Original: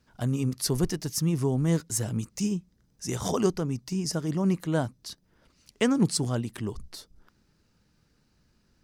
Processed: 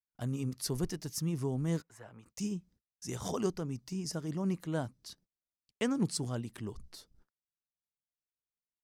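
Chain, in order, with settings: 1.82–2.26 s: three-band isolator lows -18 dB, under 570 Hz, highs -23 dB, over 2.3 kHz; gate -53 dBFS, range -37 dB; trim -8 dB

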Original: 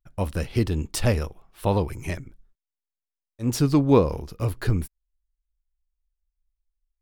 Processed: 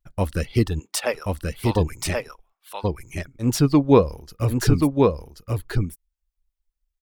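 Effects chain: 0.79–1.75 s: high-pass 320 Hz -> 1.3 kHz 12 dB/octave; reverb removal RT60 1.1 s; delay 1081 ms -3 dB; trim +3.5 dB

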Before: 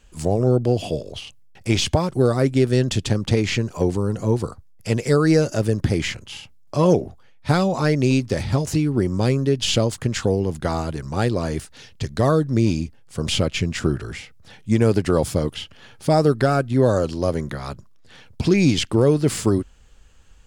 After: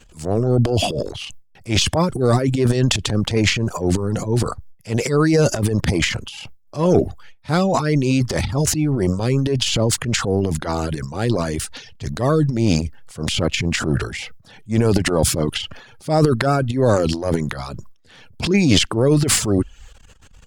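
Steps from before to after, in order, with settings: transient shaper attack -9 dB, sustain +11 dB; reverb removal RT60 0.53 s; trim +2 dB

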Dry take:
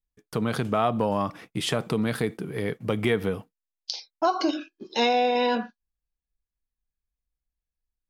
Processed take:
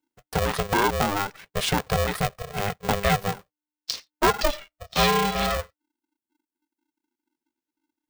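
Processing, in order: reverb removal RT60 1.4 s; polarity switched at an audio rate 300 Hz; trim +3 dB

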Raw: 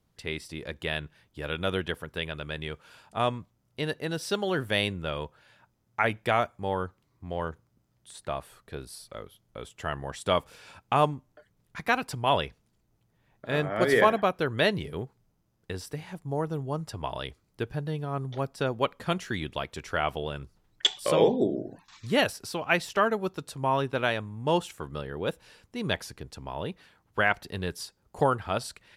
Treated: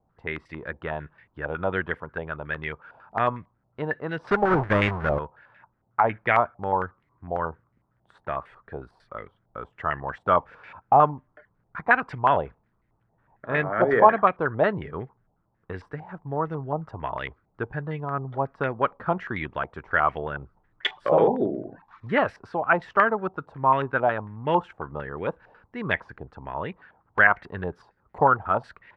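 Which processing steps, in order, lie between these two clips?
4.24–5.19 s: square wave that keeps the level; step-sequenced low-pass 11 Hz 790–2000 Hz

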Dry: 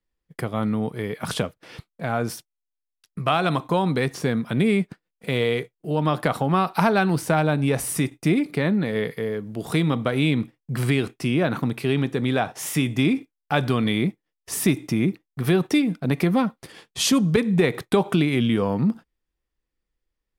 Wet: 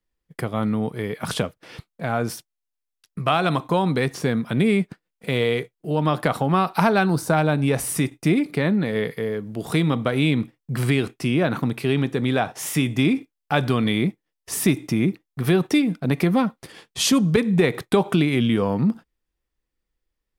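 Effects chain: time-frequency box 7.06–7.33 s, 1.7–3.5 kHz -8 dB; trim +1 dB

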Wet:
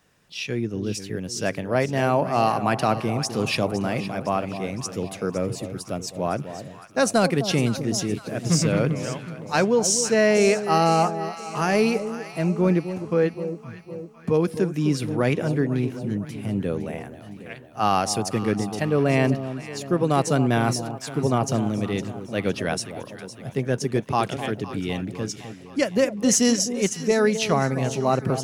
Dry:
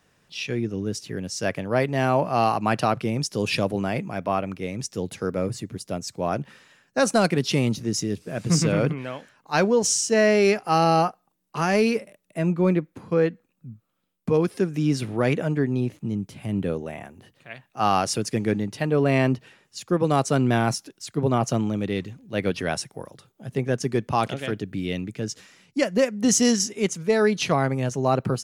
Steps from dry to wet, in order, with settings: treble shelf 11 kHz +4.5 dB; echo whose repeats swap between lows and highs 255 ms, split 940 Hz, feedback 71%, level -10 dB

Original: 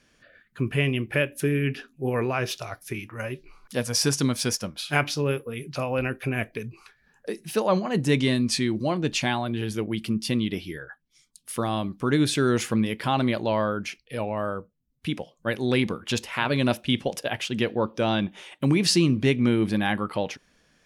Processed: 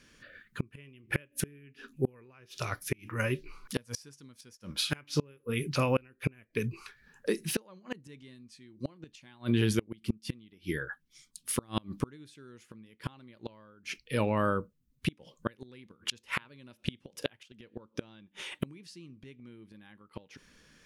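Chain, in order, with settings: peaking EQ 700 Hz -11 dB 0.45 oct; inverted gate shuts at -19 dBFS, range -32 dB; trim +3 dB

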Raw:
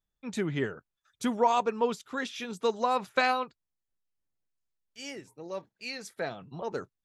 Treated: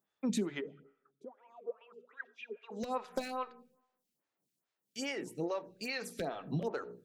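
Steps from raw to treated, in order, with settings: high-pass 150 Hz 24 dB/octave; bass shelf 250 Hz +8.5 dB; hum notches 60/120/180/240/300/360/420/480 Hz; compression 8:1, threshold -39 dBFS, peak gain reduction 20 dB; 0.60–2.70 s: wah-wah 1.3 Hz -> 5 Hz 390–2800 Hz, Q 11; wavefolder -32.5 dBFS; reverberation RT60 0.85 s, pre-delay 40 ms, DRR 19 dB; lamp-driven phase shifter 2.4 Hz; trim +9.5 dB

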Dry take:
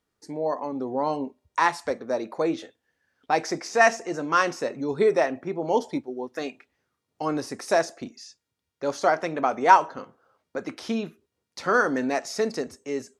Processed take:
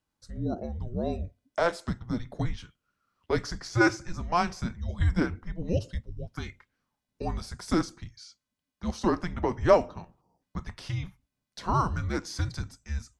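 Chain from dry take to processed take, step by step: time-frequency box 10.21–10.42 s, 1.3–4.9 kHz -14 dB; frequency shift -350 Hz; trim -4 dB

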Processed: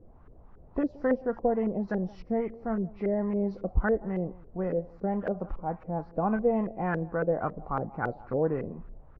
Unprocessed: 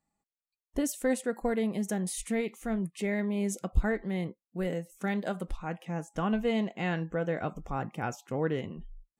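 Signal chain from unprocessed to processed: knee-point frequency compression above 1.9 kHz 1.5:1; on a send: delay 171 ms -21.5 dB; on the sum: added noise brown -51 dBFS; LFO low-pass saw up 3.6 Hz 450–1500 Hz

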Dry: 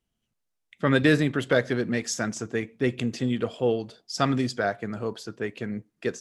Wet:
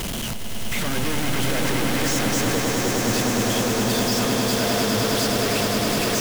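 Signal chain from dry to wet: one-bit comparator; 2.55–3.04 s: elliptic band-pass 350–1100 Hz; echo with a slow build-up 103 ms, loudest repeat 8, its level -7 dB

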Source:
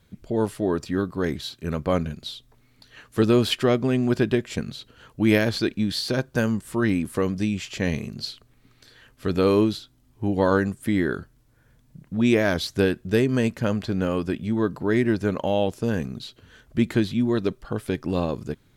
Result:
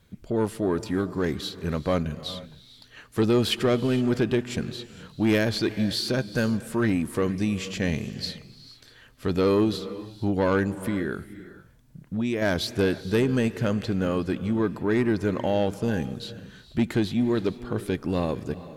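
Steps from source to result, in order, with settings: 10.73–12.42 s: compression 4:1, threshold -24 dBFS, peak gain reduction 8.5 dB; saturation -14.5 dBFS, distortion -16 dB; on a send: reverberation, pre-delay 18 ms, DRR 14 dB

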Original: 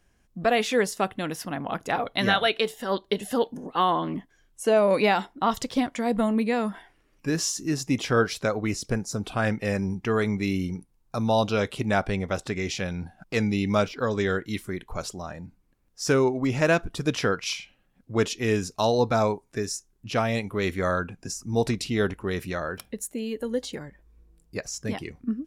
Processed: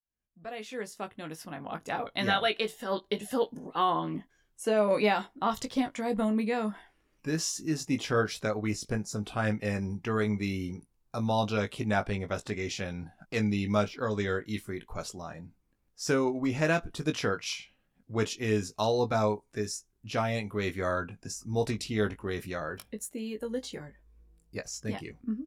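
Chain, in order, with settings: fade-in on the opening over 2.34 s; doubling 19 ms -7.5 dB; trim -5.5 dB

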